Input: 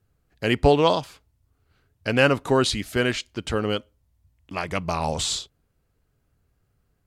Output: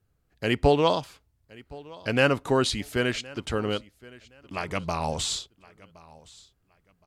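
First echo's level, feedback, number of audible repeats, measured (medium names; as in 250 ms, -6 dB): -22.0 dB, 24%, 2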